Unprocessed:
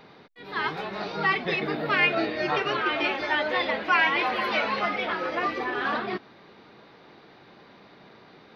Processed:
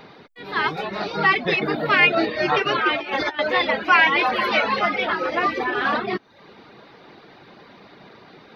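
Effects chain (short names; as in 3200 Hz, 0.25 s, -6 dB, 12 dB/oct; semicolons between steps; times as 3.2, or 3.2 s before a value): reverb removal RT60 0.56 s; 2.95–3.39 negative-ratio compressor -32 dBFS, ratio -0.5; gain +6.5 dB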